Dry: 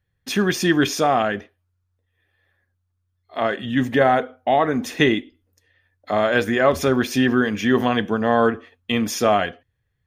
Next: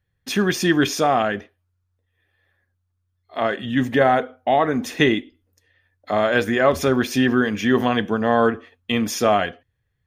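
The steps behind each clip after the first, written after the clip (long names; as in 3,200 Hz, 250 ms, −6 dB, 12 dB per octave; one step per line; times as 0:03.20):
no processing that can be heard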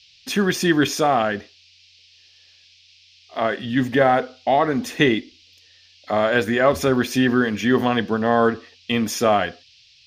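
noise in a band 2,400–5,400 Hz −53 dBFS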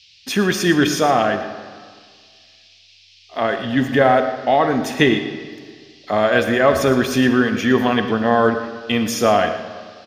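single-tap delay 114 ms −14.5 dB
on a send at −9 dB: convolution reverb RT60 1.8 s, pre-delay 10 ms
on the sum: level +2 dB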